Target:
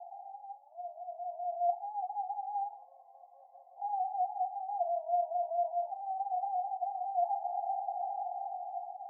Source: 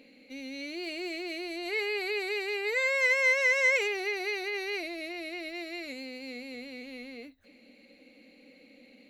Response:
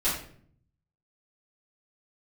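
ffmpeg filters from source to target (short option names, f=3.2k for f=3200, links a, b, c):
-filter_complex "[0:a]aeval=exprs='val(0)+0.5*0.0299*sgn(val(0))':c=same,asplit=2[a][b];[b]alimiter=level_in=0.5dB:limit=-24dB:level=0:latency=1,volume=-0.5dB,volume=1.5dB[c];[a][c]amix=inputs=2:normalize=0,dynaudnorm=f=670:g=5:m=14.5dB,asoftclip=type=tanh:threshold=-17dB,asuperpass=centerf=750:order=8:qfactor=5.4,asplit=2[d][e];[1:a]atrim=start_sample=2205[f];[e][f]afir=irnorm=-1:irlink=0,volume=-16.5dB[g];[d][g]amix=inputs=2:normalize=0"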